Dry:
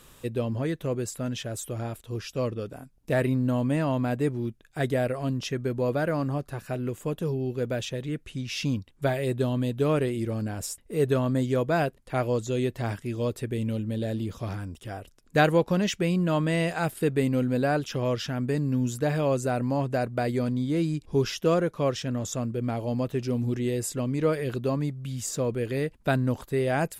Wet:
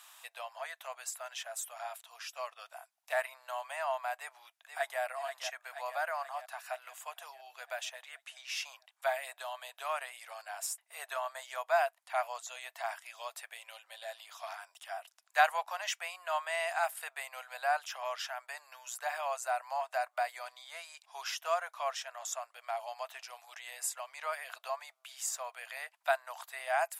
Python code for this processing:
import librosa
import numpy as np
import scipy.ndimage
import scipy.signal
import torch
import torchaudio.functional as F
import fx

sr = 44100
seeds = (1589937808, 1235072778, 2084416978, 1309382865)

y = fx.echo_throw(x, sr, start_s=4.16, length_s=0.85, ms=480, feedback_pct=60, wet_db=-8.5)
y = scipy.signal.sosfilt(scipy.signal.cheby1(6, 1.0, 670.0, 'highpass', fs=sr, output='sos'), y)
y = fx.dynamic_eq(y, sr, hz=3800.0, q=1.0, threshold_db=-49.0, ratio=4.0, max_db=-6)